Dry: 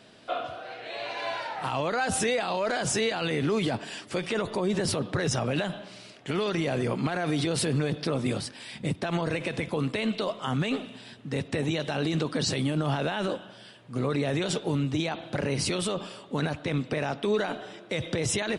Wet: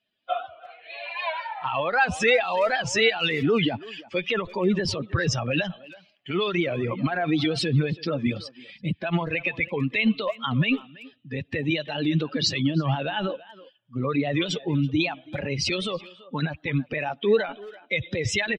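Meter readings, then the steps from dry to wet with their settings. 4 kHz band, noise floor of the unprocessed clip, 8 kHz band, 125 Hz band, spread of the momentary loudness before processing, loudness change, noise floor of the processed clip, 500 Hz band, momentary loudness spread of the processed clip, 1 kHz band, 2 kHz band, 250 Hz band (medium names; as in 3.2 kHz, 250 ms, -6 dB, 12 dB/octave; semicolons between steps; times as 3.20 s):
+4.5 dB, -50 dBFS, -3.5 dB, +2.5 dB, 8 LU, +3.5 dB, -61 dBFS, +2.5 dB, 13 LU, +3.0 dB, +6.5 dB, +3.0 dB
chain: expander on every frequency bin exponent 2; low-pass 5.9 kHz 24 dB/octave; peaking EQ 2.4 kHz +7 dB 0.84 oct; speakerphone echo 330 ms, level -18 dB; warped record 78 rpm, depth 100 cents; trim +8.5 dB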